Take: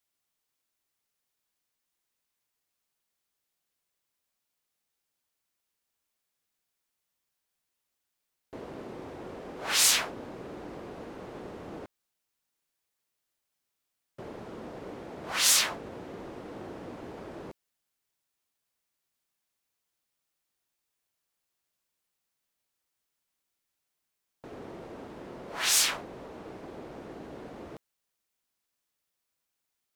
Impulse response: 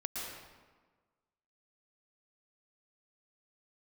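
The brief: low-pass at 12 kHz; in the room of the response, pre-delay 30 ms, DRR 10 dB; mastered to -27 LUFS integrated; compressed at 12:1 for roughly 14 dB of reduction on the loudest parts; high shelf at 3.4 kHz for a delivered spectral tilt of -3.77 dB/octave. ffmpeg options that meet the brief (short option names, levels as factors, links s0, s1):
-filter_complex "[0:a]lowpass=12000,highshelf=f=3400:g=-7,acompressor=threshold=0.0126:ratio=12,asplit=2[s0][s1];[1:a]atrim=start_sample=2205,adelay=30[s2];[s1][s2]afir=irnorm=-1:irlink=0,volume=0.251[s3];[s0][s3]amix=inputs=2:normalize=0,volume=6.68"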